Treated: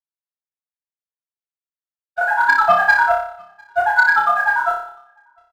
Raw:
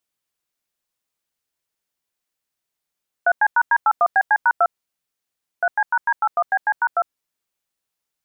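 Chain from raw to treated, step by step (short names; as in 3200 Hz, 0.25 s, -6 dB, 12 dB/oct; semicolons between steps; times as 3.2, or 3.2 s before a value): LPF 2100 Hz 24 dB/oct; gate -22 dBFS, range -25 dB; low shelf 450 Hz -7.5 dB; in parallel at -0.5 dB: limiter -19.5 dBFS, peak gain reduction 10 dB; on the sum: notch comb 390 Hz; plain phase-vocoder stretch 0.67×; phaser 1.2 Hz, delay 3.2 ms, feedback 59%; outdoor echo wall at 120 m, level -28 dB; sample leveller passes 1; on a send: flutter echo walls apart 5.1 m, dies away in 0.58 s; on the sum: gain +1.5 dB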